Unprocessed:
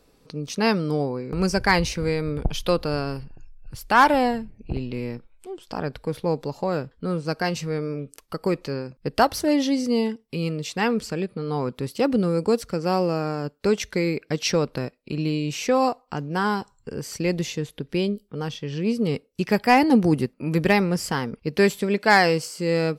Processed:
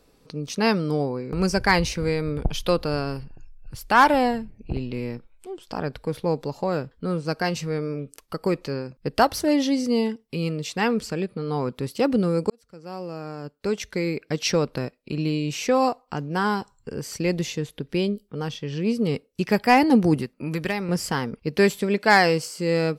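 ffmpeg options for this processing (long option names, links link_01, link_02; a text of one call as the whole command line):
ffmpeg -i in.wav -filter_complex "[0:a]asettb=1/sr,asplit=3[link_01][link_02][link_03];[link_01]atrim=end=20.164[link_04];[link_02]atrim=start=20.16:end=20.89,asetpts=PTS-STARTPTS,afade=type=in:duration=0.004:curve=qsin,afade=type=out:start_time=0.726:duration=0.004:curve=qsin,acrossover=split=1000|5600[link_05][link_06][link_07];[link_05]acompressor=threshold=-26dB:ratio=4[link_08];[link_06]acompressor=threshold=-29dB:ratio=4[link_09];[link_07]acompressor=threshold=-47dB:ratio=4[link_10];[link_08][link_09][link_10]amix=inputs=3:normalize=0[link_11];[link_03]atrim=start=20.886[link_12];[link_04][link_11]acrossfade=duration=0.004:curve1=hsin:curve2=qsin[link_13];[link_13][link_12]acrossfade=duration=0.004:curve1=qsin:curve2=hsin,asplit=2[link_14][link_15];[link_14]atrim=end=12.5,asetpts=PTS-STARTPTS,afade=type=out:start_time=12.496:duration=0.004:curve=hsin[link_16];[link_15]atrim=start=12.5,asetpts=PTS-STARTPTS,afade=type=in:duration=1.99[link_17];[link_16][link_17]concat=n=2:v=0:a=1" out.wav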